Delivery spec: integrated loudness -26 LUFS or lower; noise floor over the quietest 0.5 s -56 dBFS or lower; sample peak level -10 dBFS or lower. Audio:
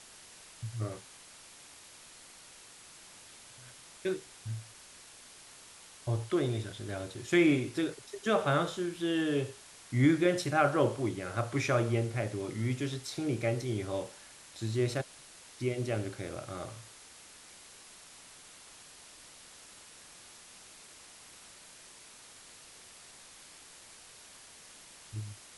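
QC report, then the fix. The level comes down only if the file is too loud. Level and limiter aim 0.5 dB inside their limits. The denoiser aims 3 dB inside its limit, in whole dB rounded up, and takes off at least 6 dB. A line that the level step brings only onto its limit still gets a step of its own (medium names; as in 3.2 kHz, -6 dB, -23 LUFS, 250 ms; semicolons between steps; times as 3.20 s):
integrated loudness -32.5 LUFS: pass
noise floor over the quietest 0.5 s -54 dBFS: fail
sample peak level -13.5 dBFS: pass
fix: noise reduction 6 dB, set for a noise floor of -54 dBFS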